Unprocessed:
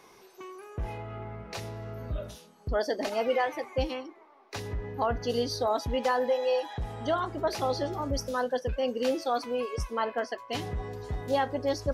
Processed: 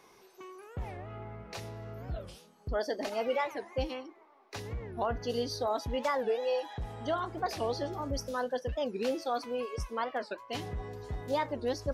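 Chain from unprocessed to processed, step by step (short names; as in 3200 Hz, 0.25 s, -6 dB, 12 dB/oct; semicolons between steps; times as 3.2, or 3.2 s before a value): record warp 45 rpm, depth 250 cents; gain -4 dB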